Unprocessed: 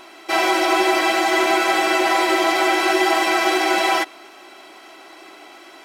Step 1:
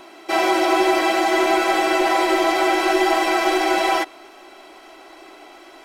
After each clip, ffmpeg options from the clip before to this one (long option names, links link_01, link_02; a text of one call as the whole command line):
ffmpeg -i in.wav -filter_complex "[0:a]asubboost=boost=9:cutoff=56,acrossover=split=860|1200[link_01][link_02][link_03];[link_01]acontrast=36[link_04];[link_04][link_02][link_03]amix=inputs=3:normalize=0,volume=-3dB" out.wav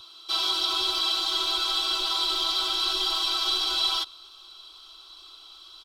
ffmpeg -i in.wav -af "firequalizer=gain_entry='entry(110,0);entry(190,-27);entry(370,-22);entry(720,-25);entry(1200,-4);entry(1900,-28);entry(3500,11);entry(6500,-6)':delay=0.05:min_phase=1" out.wav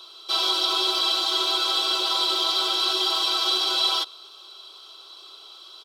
ffmpeg -i in.wav -af "highpass=frequency=450:width_type=q:width=3.6,volume=2.5dB" out.wav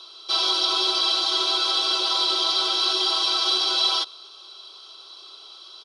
ffmpeg -i in.wav -af "aexciter=amount=1.3:drive=3.1:freq=4500,aresample=22050,aresample=44100" out.wav